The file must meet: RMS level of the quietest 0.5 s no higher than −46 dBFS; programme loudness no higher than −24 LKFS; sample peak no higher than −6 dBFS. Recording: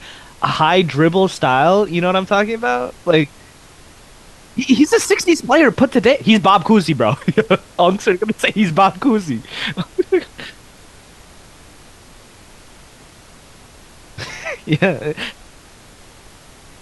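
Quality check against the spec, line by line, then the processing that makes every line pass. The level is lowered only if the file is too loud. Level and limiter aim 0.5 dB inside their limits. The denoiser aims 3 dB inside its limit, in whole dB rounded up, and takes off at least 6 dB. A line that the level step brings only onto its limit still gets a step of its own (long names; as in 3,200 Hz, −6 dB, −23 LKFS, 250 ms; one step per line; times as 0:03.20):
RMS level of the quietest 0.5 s −43 dBFS: out of spec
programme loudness −15.5 LKFS: out of spec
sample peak −1.5 dBFS: out of spec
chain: level −9 dB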